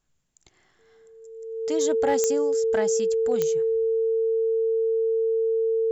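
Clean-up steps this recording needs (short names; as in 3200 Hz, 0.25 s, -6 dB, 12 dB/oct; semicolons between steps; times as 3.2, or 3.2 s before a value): clip repair -15 dBFS; de-click; notch 450 Hz, Q 30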